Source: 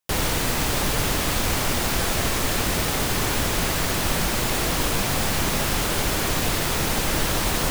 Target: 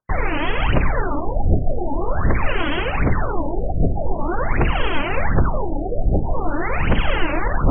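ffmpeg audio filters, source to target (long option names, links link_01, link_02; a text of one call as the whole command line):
ffmpeg -i in.wav -af "aphaser=in_gain=1:out_gain=1:delay=3.6:decay=0.77:speed=1.3:type=triangular,afftfilt=real='re*lt(b*sr/1024,760*pow(3400/760,0.5+0.5*sin(2*PI*0.46*pts/sr)))':imag='im*lt(b*sr/1024,760*pow(3400/760,0.5+0.5*sin(2*PI*0.46*pts/sr)))':win_size=1024:overlap=0.75" out.wav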